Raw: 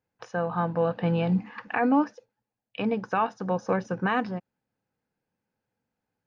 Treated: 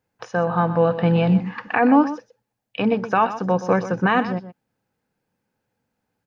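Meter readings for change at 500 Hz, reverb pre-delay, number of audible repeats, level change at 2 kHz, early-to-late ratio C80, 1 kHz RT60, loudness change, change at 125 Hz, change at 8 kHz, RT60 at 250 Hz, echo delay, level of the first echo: +7.0 dB, no reverb audible, 1, +7.0 dB, no reverb audible, no reverb audible, +7.0 dB, +7.5 dB, can't be measured, no reverb audible, 124 ms, −13.0 dB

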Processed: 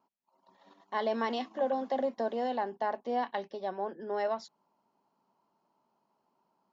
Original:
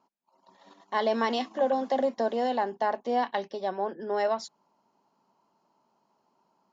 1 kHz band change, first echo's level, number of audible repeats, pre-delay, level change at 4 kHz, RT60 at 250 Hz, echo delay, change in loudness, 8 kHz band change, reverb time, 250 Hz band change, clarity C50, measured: −5.0 dB, no echo audible, no echo audible, no reverb audible, −6.5 dB, no reverb audible, no echo audible, −5.0 dB, can't be measured, no reverb audible, −4.5 dB, no reverb audible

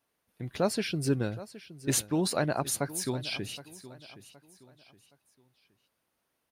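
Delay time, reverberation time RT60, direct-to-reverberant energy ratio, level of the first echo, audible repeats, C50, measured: 769 ms, no reverb audible, no reverb audible, −16.5 dB, 3, no reverb audible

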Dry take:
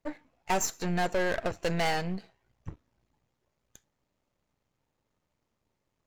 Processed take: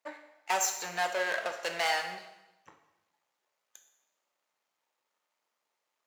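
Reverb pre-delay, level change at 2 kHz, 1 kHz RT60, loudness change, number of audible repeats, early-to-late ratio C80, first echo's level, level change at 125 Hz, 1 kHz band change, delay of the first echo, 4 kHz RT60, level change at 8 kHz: 7 ms, +2.0 dB, 0.95 s, −0.5 dB, no echo audible, 10.0 dB, no echo audible, −22.5 dB, −0.5 dB, no echo audible, 0.90 s, +2.0 dB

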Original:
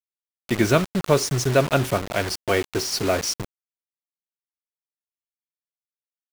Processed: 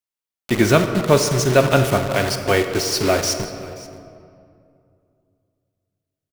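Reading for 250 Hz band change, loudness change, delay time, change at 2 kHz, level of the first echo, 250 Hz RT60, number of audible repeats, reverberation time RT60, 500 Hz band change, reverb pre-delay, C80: +4.5 dB, +4.5 dB, 531 ms, +4.5 dB, −19.5 dB, 2.9 s, 1, 2.4 s, +4.5 dB, 23 ms, 8.5 dB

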